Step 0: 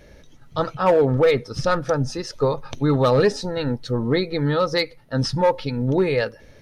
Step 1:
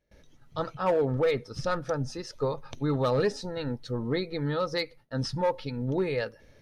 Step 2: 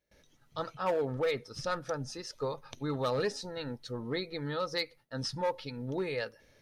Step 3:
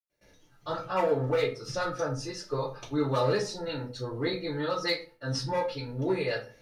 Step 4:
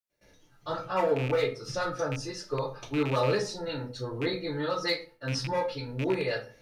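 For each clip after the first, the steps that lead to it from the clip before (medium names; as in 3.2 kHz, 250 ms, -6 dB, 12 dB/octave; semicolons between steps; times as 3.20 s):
gate with hold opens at -39 dBFS; trim -8.5 dB
tilt EQ +1.5 dB/octave; trim -4 dB
reverberation RT60 0.35 s, pre-delay 97 ms
rattle on loud lows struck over -31 dBFS, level -26 dBFS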